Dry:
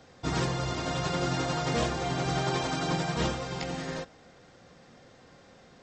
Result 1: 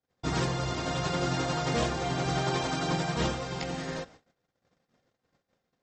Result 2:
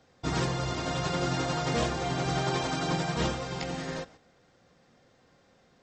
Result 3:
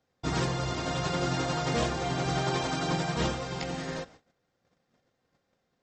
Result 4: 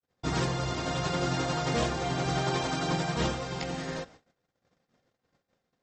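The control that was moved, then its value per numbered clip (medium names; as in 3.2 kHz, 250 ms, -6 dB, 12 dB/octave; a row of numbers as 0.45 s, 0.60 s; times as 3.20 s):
gate, range: -36 dB, -8 dB, -22 dB, -55 dB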